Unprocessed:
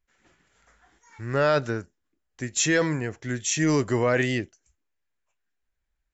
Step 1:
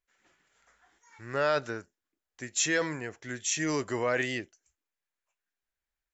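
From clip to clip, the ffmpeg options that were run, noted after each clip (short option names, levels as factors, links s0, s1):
-af "lowshelf=f=270:g=-11.5,volume=0.668"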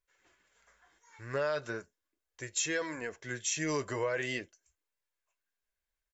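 -af "aecho=1:1:1.9:0.31,acompressor=threshold=0.0398:ratio=6,flanger=delay=2.1:depth=4.8:regen=-51:speed=0.4:shape=sinusoidal,volume=1.41"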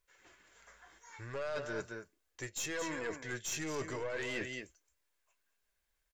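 -af "aecho=1:1:220:0.224,aeval=exprs='(tanh(28.2*val(0)+0.45)-tanh(0.45))/28.2':c=same,areverse,acompressor=threshold=0.00631:ratio=6,areverse,volume=2.51"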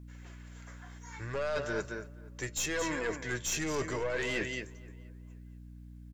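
-filter_complex "[0:a]aeval=exprs='val(0)+0.00251*(sin(2*PI*60*n/s)+sin(2*PI*2*60*n/s)/2+sin(2*PI*3*60*n/s)/3+sin(2*PI*4*60*n/s)/4+sin(2*PI*5*60*n/s)/5)':c=same,asplit=2[s0][s1];[s1]adelay=478,lowpass=f=2000:p=1,volume=0.075,asplit=2[s2][s3];[s3]adelay=478,lowpass=f=2000:p=1,volume=0.3[s4];[s0][s2][s4]amix=inputs=3:normalize=0,volume=1.78"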